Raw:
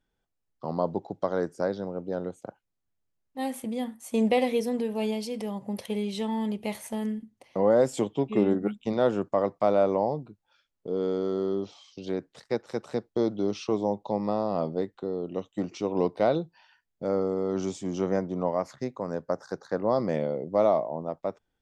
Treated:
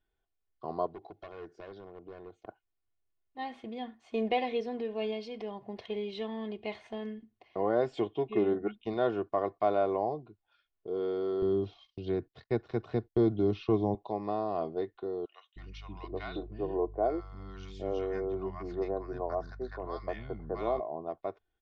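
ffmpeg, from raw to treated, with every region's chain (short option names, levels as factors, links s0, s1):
-filter_complex "[0:a]asettb=1/sr,asplit=3[s0][s1][s2];[s0]atrim=end=0.864[s3];[s1]atrim=start=0.86:end=2.47,asetpts=PTS-STARTPTS,afade=t=in:d=0.004:c=qsin,afade=t=out:st=1.606:d=0.004:c=qsin,volume=22.4,asoftclip=hard,volume=0.0447,acompressor=threshold=0.00891:ratio=2.5:attack=3.2:release=140:knee=1:detection=peak[s4];[s2]atrim=start=2.466[s5];[s3][s4]acrossfade=d=0.004:c1=hsin:c2=qsin[s6];[s6][s5]acrossfade=d=0.004:c1=qsin:c2=hsin,asettb=1/sr,asplit=3[s7][s8][s9];[s7]atrim=end=11.424[s10];[s8]atrim=start=11.42:end=13.95,asetpts=PTS-STARTPTS,afade=t=in:d=0.004:c=qsin,afade=t=out:st=2.526:d=0.004:c=qsin,acrossover=split=4400[s11][s12];[s12]acompressor=threshold=0.00158:ratio=4:attack=1:release=60[s13];[s11][s13]amix=inputs=2:normalize=0,agate=range=0.112:threshold=0.00178:ratio=16:release=100:detection=peak,bass=f=250:g=14,treble=f=4000:g=2[s14];[s9]atrim=start=13.946[s15];[s10][s14]acrossfade=d=0.004:c1=hsin:c2=qsin[s16];[s16][s15]acrossfade=d=0.004:c1=qsin:c2=hsin,asettb=1/sr,asplit=3[s17][s18][s19];[s17]atrim=end=15.254[s20];[s18]atrim=start=15.25:end=20.8,asetpts=PTS-STARTPTS,afade=t=in:d=0.004:c=qsin,afade=t=out:st=5.546:d=0.004:c=qsin,aeval=exprs='val(0)+0.00794*(sin(2*PI*50*n/s)+sin(2*PI*2*50*n/s)/2+sin(2*PI*3*50*n/s)/3+sin(2*PI*4*50*n/s)/4+sin(2*PI*5*50*n/s)/5)':c=same,acrossover=split=220|1100[s21][s22][s23];[s21]adelay=310[s24];[s22]adelay=780[s25];[s24][s25][s23]amix=inputs=3:normalize=0,atrim=end_sample=244755[s26];[s19]atrim=start=20.796[s27];[s20][s26]acrossfade=d=0.004:c1=hsin:c2=qsin[s28];[s28][s27]acrossfade=d=0.004:c1=qsin:c2=hsin,lowpass=f=4000:w=0.5412,lowpass=f=4000:w=1.3066,equalizer=f=270:t=o:w=0.2:g=-11,aecho=1:1:2.8:0.63,volume=0.562"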